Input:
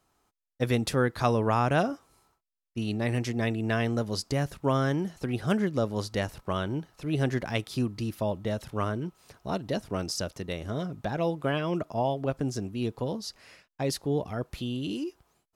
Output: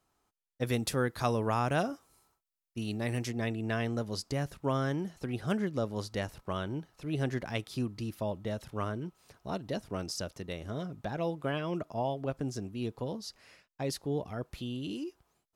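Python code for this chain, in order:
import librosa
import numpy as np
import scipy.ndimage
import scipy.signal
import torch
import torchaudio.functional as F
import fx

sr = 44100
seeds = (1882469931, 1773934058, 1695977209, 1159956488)

y = fx.high_shelf(x, sr, hz=6700.0, db=8.5, at=(0.66, 3.31))
y = y * 10.0 ** (-5.0 / 20.0)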